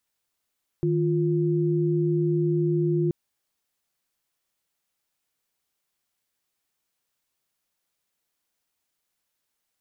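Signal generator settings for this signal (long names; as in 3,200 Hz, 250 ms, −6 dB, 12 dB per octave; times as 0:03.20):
held notes D#3/F4 sine, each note −23 dBFS 2.28 s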